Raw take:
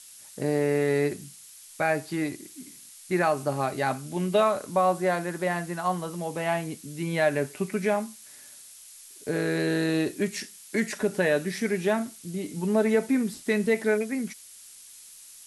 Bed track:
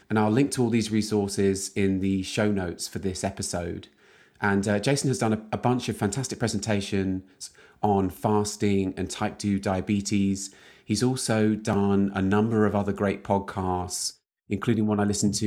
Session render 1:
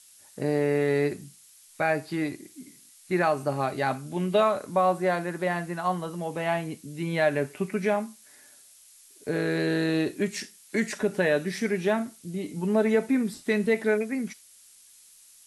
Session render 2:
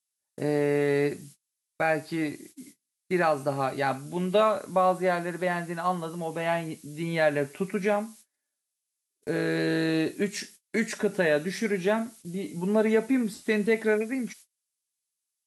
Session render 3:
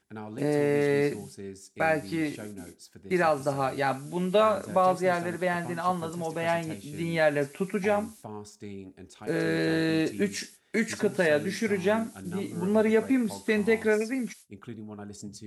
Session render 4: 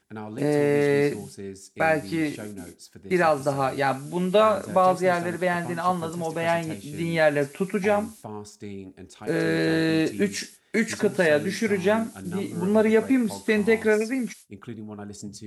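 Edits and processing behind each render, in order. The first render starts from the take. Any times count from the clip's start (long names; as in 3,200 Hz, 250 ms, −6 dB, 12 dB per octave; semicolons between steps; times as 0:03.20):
noise reduction from a noise print 6 dB
low-shelf EQ 78 Hz −7 dB; noise gate −48 dBFS, range −31 dB
mix in bed track −17.5 dB
level +3.5 dB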